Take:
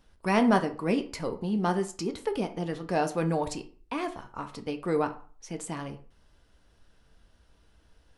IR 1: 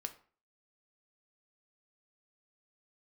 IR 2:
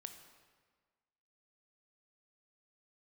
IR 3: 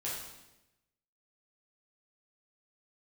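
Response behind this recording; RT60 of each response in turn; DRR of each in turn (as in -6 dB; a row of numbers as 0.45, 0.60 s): 1; 0.40, 1.5, 0.95 s; 6.5, 6.5, -7.5 dB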